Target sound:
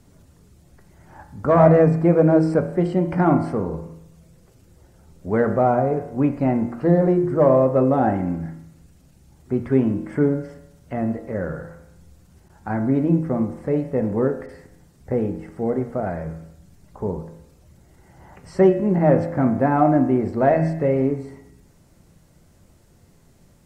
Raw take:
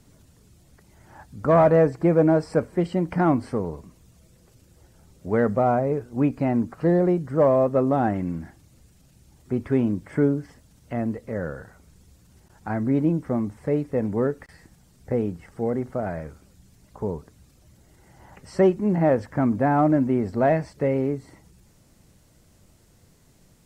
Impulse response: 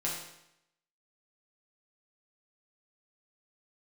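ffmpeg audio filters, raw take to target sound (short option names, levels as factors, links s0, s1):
-filter_complex "[0:a]bandreject=f=118.9:t=h:w=4,bandreject=f=237.8:t=h:w=4,asplit=2[s0][s1];[1:a]atrim=start_sample=2205,lowpass=2300[s2];[s1][s2]afir=irnorm=-1:irlink=0,volume=0.473[s3];[s0][s3]amix=inputs=2:normalize=0,volume=0.891"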